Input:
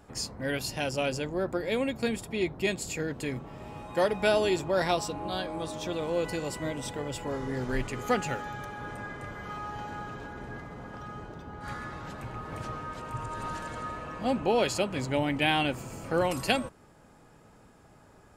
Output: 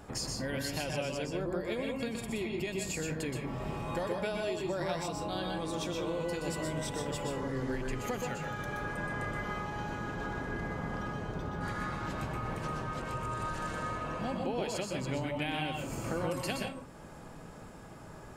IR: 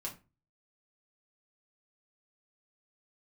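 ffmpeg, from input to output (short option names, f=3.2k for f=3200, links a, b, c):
-filter_complex "[0:a]acompressor=threshold=-40dB:ratio=6,asplit=2[a][b];[1:a]atrim=start_sample=2205,adelay=122[c];[b][c]afir=irnorm=-1:irlink=0,volume=-1dB[d];[a][d]amix=inputs=2:normalize=0,volume=5dB"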